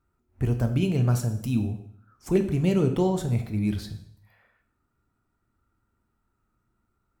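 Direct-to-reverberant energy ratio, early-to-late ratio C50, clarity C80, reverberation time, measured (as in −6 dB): 6.5 dB, 10.5 dB, 13.5 dB, 0.65 s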